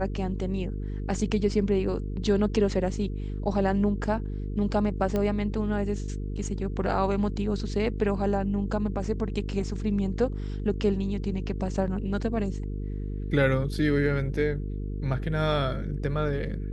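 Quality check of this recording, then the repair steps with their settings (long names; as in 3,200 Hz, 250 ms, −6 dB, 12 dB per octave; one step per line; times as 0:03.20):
mains buzz 50 Hz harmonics 9 −32 dBFS
0:05.16: click −16 dBFS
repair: click removal
hum removal 50 Hz, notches 9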